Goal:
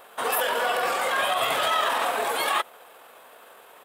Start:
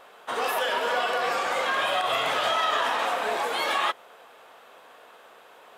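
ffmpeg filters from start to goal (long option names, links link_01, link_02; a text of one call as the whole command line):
ffmpeg -i in.wav -af "aexciter=amount=3.2:drive=5.8:freq=8300,atempo=1.5,volume=1.5dB" out.wav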